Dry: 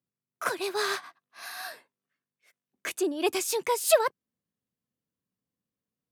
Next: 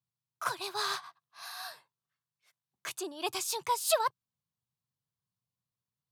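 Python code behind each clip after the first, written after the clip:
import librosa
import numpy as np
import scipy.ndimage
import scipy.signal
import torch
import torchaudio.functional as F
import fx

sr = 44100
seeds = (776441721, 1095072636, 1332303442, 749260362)

y = fx.graphic_eq(x, sr, hz=(125, 250, 500, 1000, 2000, 4000), db=(11, -12, -6, 7, -6, 5))
y = y * librosa.db_to_amplitude(-4.5)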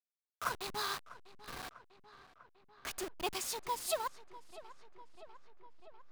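y = fx.delta_hold(x, sr, step_db=-34.5)
y = fx.rider(y, sr, range_db=4, speed_s=0.5)
y = fx.echo_filtered(y, sr, ms=647, feedback_pct=70, hz=3700.0, wet_db=-17.0)
y = y * librosa.db_to_amplitude(-4.0)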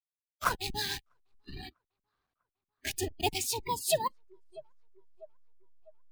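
y = fx.octave_divider(x, sr, octaves=2, level_db=3.0)
y = fx.hpss(y, sr, part='percussive', gain_db=8)
y = fx.noise_reduce_blind(y, sr, reduce_db=29)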